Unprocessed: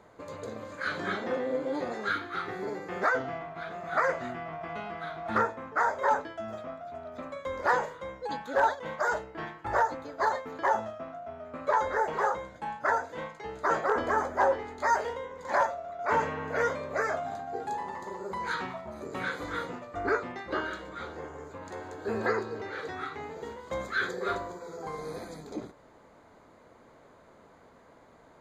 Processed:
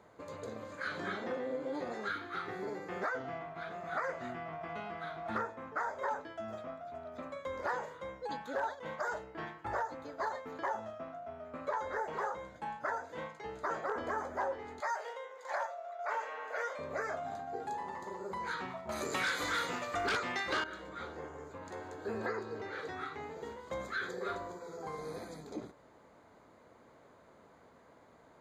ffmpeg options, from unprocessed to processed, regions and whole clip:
ffmpeg -i in.wav -filter_complex "[0:a]asettb=1/sr,asplit=3[link_01][link_02][link_03];[link_01]atrim=end=14.804[link_04];[link_02]atrim=start=14.8:end=16.79,asetpts=PTS-STARTPTS,afade=type=in:duration=0.004:curve=qsin,afade=type=out:start_time=1.986:duration=0.004:curve=qsin,highpass=frequency=520:width=0.5412,highpass=frequency=520:width=1.3066,bandreject=frequency=990:width=18[link_05];[link_03]atrim=start=16.786[link_06];[link_04][link_05]acrossfade=duration=0.004:curve1=hsin:curve2=qsin[link_07];[link_07][link_06]acrossfade=duration=0.004:curve1=qsin:curve2=hsin,asettb=1/sr,asplit=3[link_08][link_09][link_10];[link_08]atrim=end=18.894[link_11];[link_09]atrim=start=18.89:end=20.64,asetpts=PTS-STARTPTS,afade=type=in:duration=0.004:curve=qsin,afade=type=out:start_time=1.746:duration=0.004:curve=qsin,tiltshelf=frequency=1300:gain=-8,aeval=exprs='0.15*sin(PI/2*3.16*val(0)/0.15)':channel_layout=same[link_12];[link_10]atrim=start=20.636[link_13];[link_11][link_12]acrossfade=duration=0.004:curve1=hsin:curve2=qsin[link_14];[link_14][link_13]acrossfade=duration=0.004:curve1=qsin:curve2=hsin,highpass=51,acompressor=threshold=-31dB:ratio=2.5,volume=-4dB" out.wav

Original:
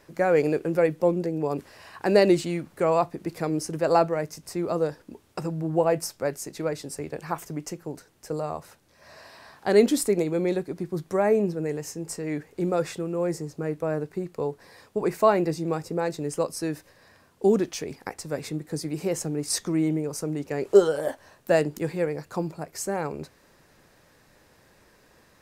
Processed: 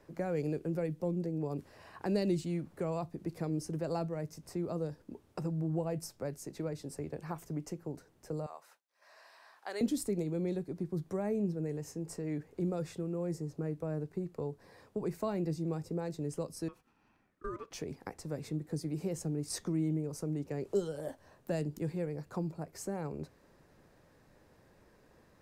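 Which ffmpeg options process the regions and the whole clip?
ffmpeg -i in.wav -filter_complex "[0:a]asettb=1/sr,asplit=3[link_01][link_02][link_03];[link_01]atrim=end=8.464[link_04];[link_02]atrim=start=8.46:end=9.81,asetpts=PTS-STARTPTS,afade=type=in:duration=0.004:curve=qsin,afade=type=out:start_time=1.346:duration=0.004:curve=qsin,highpass=950,agate=range=-33dB:threshold=-58dB:ratio=3:release=100:detection=peak[link_05];[link_03]atrim=start=9.806[link_06];[link_04][link_05]acrossfade=duration=0.004:curve1=hsin:curve2=qsin[link_07];[link_07][link_06]acrossfade=duration=0.004:curve1=qsin:curve2=hsin,asettb=1/sr,asplit=3[link_08][link_09][link_10];[link_08]atrim=end=16.684[link_11];[link_09]atrim=start=16.68:end=17.71,asetpts=PTS-STARTPTS,afade=type=in:duration=0.004:curve=qsin,afade=type=out:start_time=1.026:duration=0.004:curve=qsin,highpass=600,highshelf=frequency=2200:gain=-11,aeval=exprs='val(0)*sin(2*PI*800*n/s)':channel_layout=same[link_12];[link_10]atrim=start=17.706[link_13];[link_11][link_12]acrossfade=duration=0.004:curve1=hsin:curve2=qsin[link_14];[link_14][link_13]acrossfade=duration=0.004:curve1=qsin:curve2=hsin,tiltshelf=frequency=1200:gain=5,acrossover=split=220|3000[link_15][link_16][link_17];[link_16]acompressor=threshold=-33dB:ratio=2.5[link_18];[link_15][link_18][link_17]amix=inputs=3:normalize=0,volume=-7.5dB" out.wav

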